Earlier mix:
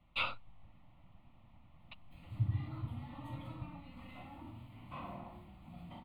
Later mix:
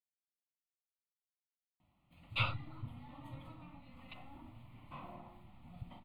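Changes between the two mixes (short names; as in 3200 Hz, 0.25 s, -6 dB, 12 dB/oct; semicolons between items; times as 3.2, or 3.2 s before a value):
speech: entry +2.20 s; background: send -10.5 dB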